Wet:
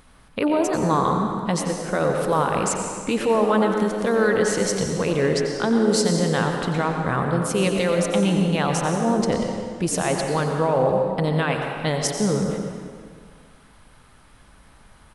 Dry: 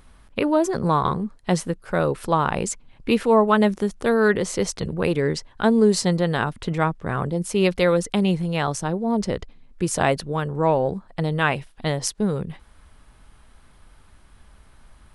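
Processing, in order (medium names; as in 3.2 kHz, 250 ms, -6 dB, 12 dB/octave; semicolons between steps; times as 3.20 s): bass shelf 92 Hz -8.5 dB; band-stop 370 Hz, Q 12; peak limiter -15 dBFS, peak gain reduction 10 dB; frequency-shifting echo 90 ms, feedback 35%, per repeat +110 Hz, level -12.5 dB; on a send at -3.5 dB: reverberation RT60 1.9 s, pre-delay 103 ms; on the sum: trim +2.5 dB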